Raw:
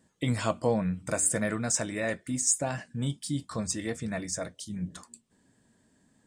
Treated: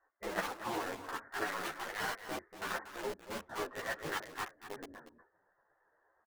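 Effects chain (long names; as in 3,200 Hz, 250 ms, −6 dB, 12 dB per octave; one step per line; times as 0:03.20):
Butterworth low-pass 1,800 Hz 72 dB per octave
mains-hum notches 60/120/180/240/300/360 Hz
in parallel at −5 dB: centre clipping without the shift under −30 dBFS
on the sum: brickwall limiter −19.5 dBFS, peak gain reduction 10 dB
0:03.20–0:04.08: leveller curve on the samples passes 1
gate on every frequency bin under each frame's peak −15 dB weak
low-shelf EQ 130 Hz −11.5 dB
on a send: single-tap delay 236 ms −11.5 dB
on the sum: string-ensemble chorus
level +7.5 dB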